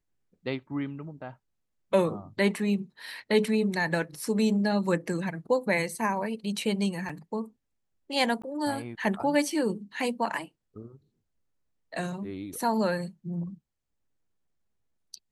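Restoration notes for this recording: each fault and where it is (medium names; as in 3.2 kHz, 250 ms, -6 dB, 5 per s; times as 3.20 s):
7.09 s: dropout 4.8 ms
8.42–8.44 s: dropout 15 ms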